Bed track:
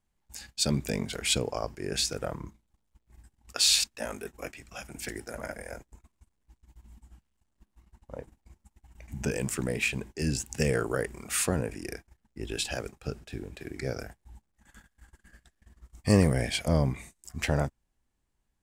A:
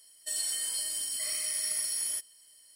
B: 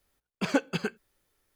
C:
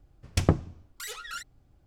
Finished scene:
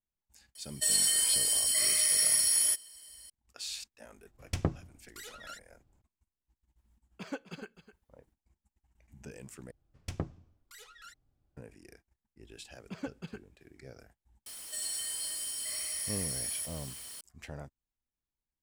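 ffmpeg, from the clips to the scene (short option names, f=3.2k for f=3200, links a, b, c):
-filter_complex "[1:a]asplit=2[a][b];[3:a]asplit=2[c][d];[2:a]asplit=2[e][f];[0:a]volume=-17dB[g];[a]acontrast=81[h];[e]aecho=1:1:256:0.211[i];[f]lowshelf=f=260:g=10[j];[b]aeval=exprs='val(0)+0.5*0.02*sgn(val(0))':c=same[k];[g]asplit=2[l][m];[l]atrim=end=9.714[n];[d]atrim=end=1.86,asetpts=PTS-STARTPTS,volume=-14dB[o];[m]atrim=start=11.566[p];[h]atrim=end=2.75,asetpts=PTS-STARTPTS,volume=-1dB,afade=t=in:d=0.004:c=hsin,afade=t=out:st=2.746:d=0.004:c=hsin,adelay=550[q];[c]atrim=end=1.86,asetpts=PTS-STARTPTS,volume=-8.5dB,afade=t=in:d=0.004:c=hsin,afade=t=out:st=1.856:d=0.004:c=hsin,adelay=4160[r];[i]atrim=end=1.55,asetpts=PTS-STARTPTS,volume=-14dB,afade=t=in:d=0.004:c=hsin,afade=t=out:st=1.546:d=0.004:c=hsin,adelay=6780[s];[j]atrim=end=1.55,asetpts=PTS-STARTPTS,volume=-17.5dB,afade=t=in:d=0.004:c=hsin,afade=t=out:st=1.546:d=0.004:c=hsin,adelay=12490[t];[k]atrim=end=2.75,asetpts=PTS-STARTPTS,volume=-6.5dB,afade=t=in:d=0.004:c=hsin,afade=t=out:st=2.746:d=0.004:c=hsin,adelay=14460[u];[n][o]acrossfade=d=0.004:c1=hsin:c2=hsin[v];[v][p]acrossfade=d=0.004:c1=hsin:c2=hsin[w];[w][q][r][s][t][u]amix=inputs=6:normalize=0"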